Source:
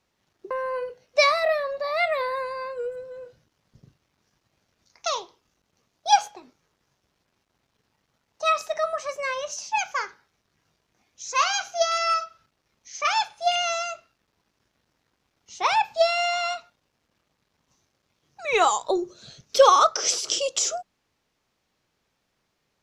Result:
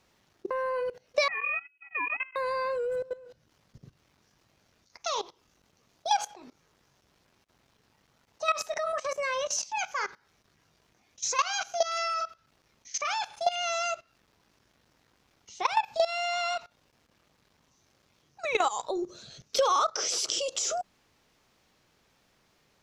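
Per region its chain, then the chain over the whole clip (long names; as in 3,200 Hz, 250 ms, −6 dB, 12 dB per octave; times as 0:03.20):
0:01.28–0:02.36: noise gate −25 dBFS, range −34 dB + voice inversion scrambler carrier 3,100 Hz
whole clip: output level in coarse steps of 19 dB; brickwall limiter −18.5 dBFS; downward compressor 5 to 1, threshold −30 dBFS; level +8 dB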